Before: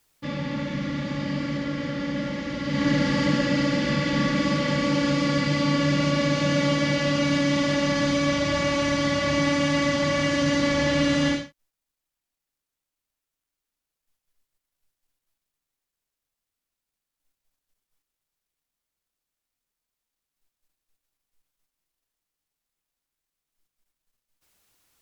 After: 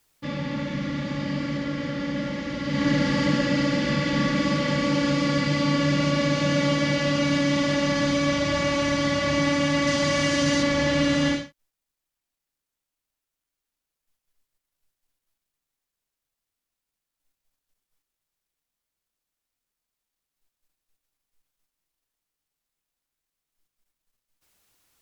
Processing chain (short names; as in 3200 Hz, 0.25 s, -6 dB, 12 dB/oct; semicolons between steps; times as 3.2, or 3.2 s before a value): 9.87–10.63 high shelf 4800 Hz +8 dB